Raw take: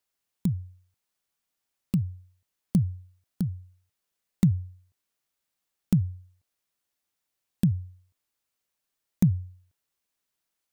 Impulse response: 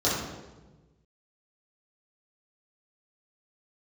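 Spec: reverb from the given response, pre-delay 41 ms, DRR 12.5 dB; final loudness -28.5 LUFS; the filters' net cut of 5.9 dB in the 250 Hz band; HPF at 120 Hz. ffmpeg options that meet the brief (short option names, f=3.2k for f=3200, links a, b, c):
-filter_complex "[0:a]highpass=120,equalizer=f=250:t=o:g=-9,asplit=2[a][b];[1:a]atrim=start_sample=2205,adelay=41[c];[b][c]afir=irnorm=-1:irlink=0,volume=-26dB[d];[a][d]amix=inputs=2:normalize=0,volume=6dB"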